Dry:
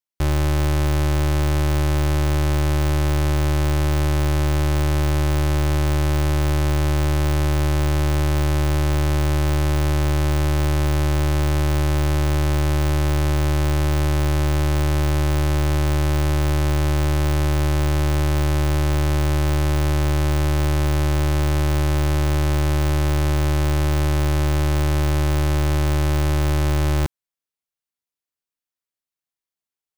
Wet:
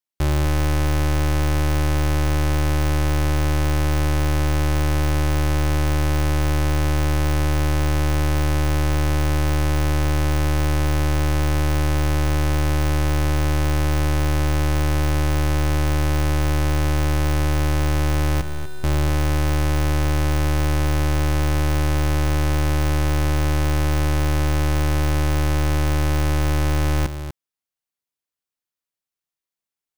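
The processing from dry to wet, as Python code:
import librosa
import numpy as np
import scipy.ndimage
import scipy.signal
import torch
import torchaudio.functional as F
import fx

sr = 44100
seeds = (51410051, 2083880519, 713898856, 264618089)

y = fx.stiff_resonator(x, sr, f0_hz=180.0, decay_s=0.33, stiffness=0.008, at=(18.41, 18.84))
y = y + 10.0 ** (-10.5 / 20.0) * np.pad(y, (int(245 * sr / 1000.0), 0))[:len(y)]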